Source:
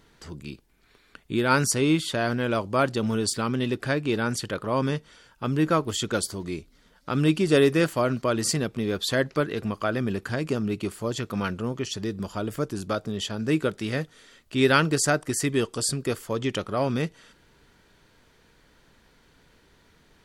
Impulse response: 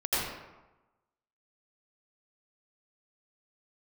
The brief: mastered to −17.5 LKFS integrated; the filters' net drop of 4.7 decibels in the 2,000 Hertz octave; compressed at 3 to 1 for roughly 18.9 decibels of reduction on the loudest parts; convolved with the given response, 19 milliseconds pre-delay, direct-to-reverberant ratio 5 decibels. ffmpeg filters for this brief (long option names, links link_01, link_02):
-filter_complex "[0:a]equalizer=frequency=2000:width_type=o:gain=-7,acompressor=threshold=-42dB:ratio=3,asplit=2[link_01][link_02];[1:a]atrim=start_sample=2205,adelay=19[link_03];[link_02][link_03]afir=irnorm=-1:irlink=0,volume=-15.5dB[link_04];[link_01][link_04]amix=inputs=2:normalize=0,volume=22.5dB"